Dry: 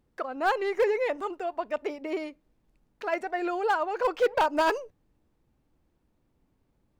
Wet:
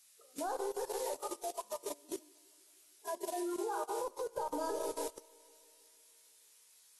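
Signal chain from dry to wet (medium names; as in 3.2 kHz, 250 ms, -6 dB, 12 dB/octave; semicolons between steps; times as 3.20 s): spectral noise reduction 19 dB; de-hum 159.8 Hz, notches 39; level-controlled noise filter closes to 480 Hz, open at -25.5 dBFS; Butterworth band-stop 2.5 kHz, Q 0.52; added noise blue -45 dBFS; 0.71–3.07 s: peaking EQ 450 Hz -13 dB 0.65 oct; feedback comb 58 Hz, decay 0.88 s, harmonics all, mix 80%; bucket-brigade echo 157 ms, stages 2048, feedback 70%, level -13 dB; compression 12:1, threshold -41 dBFS, peak gain reduction 11.5 dB; treble shelf 2.5 kHz +6 dB; level held to a coarse grid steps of 23 dB; trim +9.5 dB; AAC 32 kbps 32 kHz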